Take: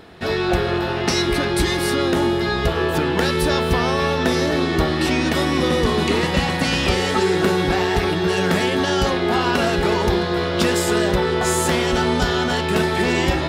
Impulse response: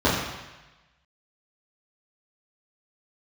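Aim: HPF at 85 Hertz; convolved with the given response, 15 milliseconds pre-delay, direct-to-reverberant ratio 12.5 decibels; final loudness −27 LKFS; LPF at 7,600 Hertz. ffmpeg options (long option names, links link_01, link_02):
-filter_complex "[0:a]highpass=85,lowpass=7600,asplit=2[link_01][link_02];[1:a]atrim=start_sample=2205,adelay=15[link_03];[link_02][link_03]afir=irnorm=-1:irlink=0,volume=-32dB[link_04];[link_01][link_04]amix=inputs=2:normalize=0,volume=-7.5dB"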